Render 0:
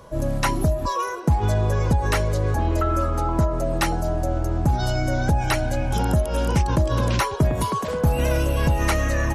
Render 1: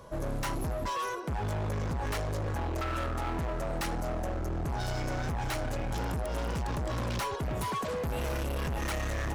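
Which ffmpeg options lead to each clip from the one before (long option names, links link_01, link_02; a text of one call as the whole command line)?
ffmpeg -i in.wav -af "volume=26dB,asoftclip=hard,volume=-26dB,volume=-4.5dB" out.wav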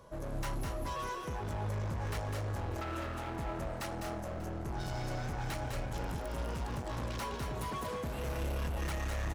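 ffmpeg -i in.wav -af "aecho=1:1:203|233|590:0.501|0.398|0.126,volume=-6.5dB" out.wav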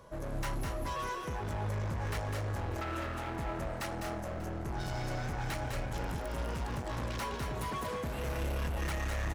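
ffmpeg -i in.wav -af "equalizer=frequency=1900:width=1.5:gain=2.5,volume=1dB" out.wav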